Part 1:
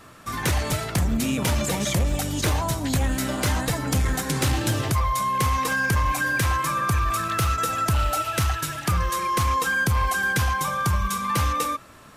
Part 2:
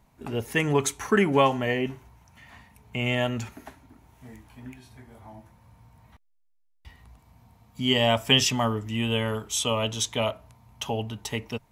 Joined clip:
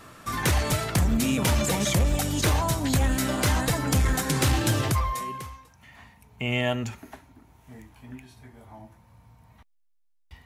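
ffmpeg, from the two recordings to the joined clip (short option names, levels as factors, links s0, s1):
-filter_complex "[0:a]apad=whole_dur=10.45,atrim=end=10.45,atrim=end=5.82,asetpts=PTS-STARTPTS[s0];[1:a]atrim=start=1.4:end=6.99,asetpts=PTS-STARTPTS[s1];[s0][s1]acrossfade=d=0.96:c1=qua:c2=qua"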